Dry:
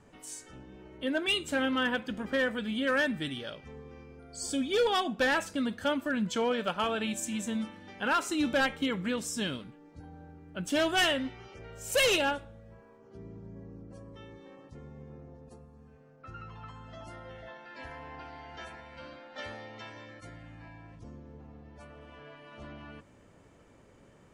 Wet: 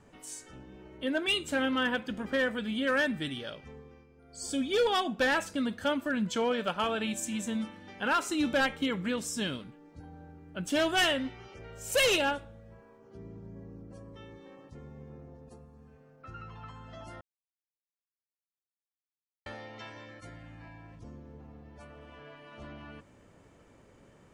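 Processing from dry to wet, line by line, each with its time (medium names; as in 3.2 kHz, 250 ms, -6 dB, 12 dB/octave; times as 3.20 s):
3.63–4.59 s: dip -9.5 dB, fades 0.44 s
17.21–19.46 s: mute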